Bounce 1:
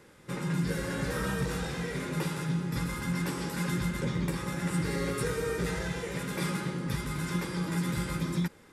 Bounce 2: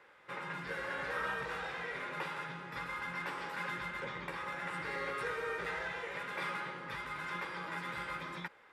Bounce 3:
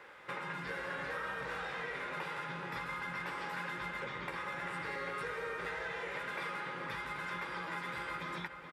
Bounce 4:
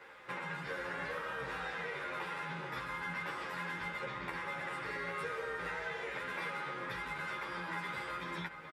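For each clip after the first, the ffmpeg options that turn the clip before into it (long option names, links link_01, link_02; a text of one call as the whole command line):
ffmpeg -i in.wav -filter_complex "[0:a]acrossover=split=570 3200:gain=0.0794 1 0.0891[link_01][link_02][link_03];[link_01][link_02][link_03]amix=inputs=3:normalize=0,volume=1dB" out.wav
ffmpeg -i in.wav -filter_complex "[0:a]acompressor=threshold=-46dB:ratio=4,asplit=2[link_01][link_02];[link_02]adelay=425.7,volume=-8dB,highshelf=frequency=4000:gain=-9.58[link_03];[link_01][link_03]amix=inputs=2:normalize=0,volume=7dB" out.wav
ffmpeg -i in.wav -filter_complex "[0:a]asplit=2[link_01][link_02];[link_02]adelay=10.7,afreqshift=-1.5[link_03];[link_01][link_03]amix=inputs=2:normalize=1,volume=3dB" out.wav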